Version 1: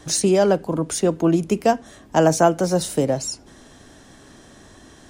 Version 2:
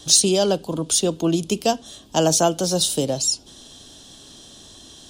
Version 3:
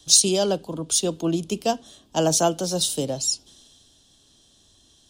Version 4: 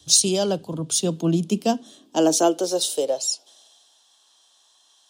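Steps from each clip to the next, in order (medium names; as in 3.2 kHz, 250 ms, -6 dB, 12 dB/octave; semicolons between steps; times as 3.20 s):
resonant high shelf 2.6 kHz +8.5 dB, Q 3; trim -2.5 dB
three bands expanded up and down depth 40%; trim -3.5 dB
high-pass sweep 85 Hz -> 910 Hz, 0.21–4.05 s; trim -1 dB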